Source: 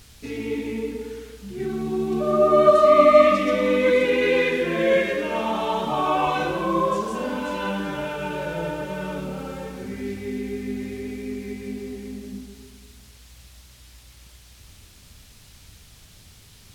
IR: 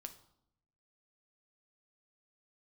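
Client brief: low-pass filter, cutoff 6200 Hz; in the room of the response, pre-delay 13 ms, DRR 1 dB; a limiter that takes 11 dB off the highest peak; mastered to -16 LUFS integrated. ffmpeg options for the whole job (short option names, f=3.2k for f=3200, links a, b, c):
-filter_complex "[0:a]lowpass=6.2k,alimiter=limit=-13.5dB:level=0:latency=1,asplit=2[a][b];[1:a]atrim=start_sample=2205,adelay=13[c];[b][c]afir=irnorm=-1:irlink=0,volume=4dB[d];[a][d]amix=inputs=2:normalize=0,volume=6.5dB"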